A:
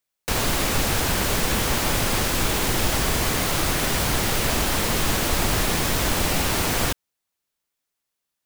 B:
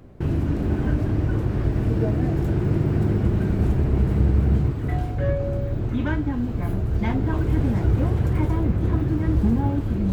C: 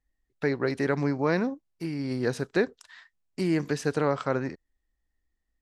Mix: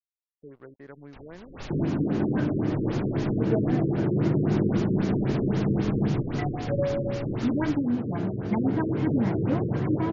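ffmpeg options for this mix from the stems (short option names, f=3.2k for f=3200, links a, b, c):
-filter_complex "[0:a]adelay=850,volume=-16.5dB[a];[1:a]highpass=f=140:w=0.5412,highpass=f=140:w=1.3066,adelay=1500,volume=1dB[b];[2:a]lowpass=2.1k,aeval=exprs='sgn(val(0))*max(abs(val(0))-0.01,0)':c=same,volume=-18dB,asplit=2[c][d];[d]apad=whole_len=410421[e];[a][e]sidechaincompress=threshold=-55dB:ratio=10:attack=49:release=148[f];[f][b][c]amix=inputs=3:normalize=0,afftfilt=real='re*lt(b*sr/1024,520*pow(7300/520,0.5+0.5*sin(2*PI*3.8*pts/sr)))':imag='im*lt(b*sr/1024,520*pow(7300/520,0.5+0.5*sin(2*PI*3.8*pts/sr)))':win_size=1024:overlap=0.75"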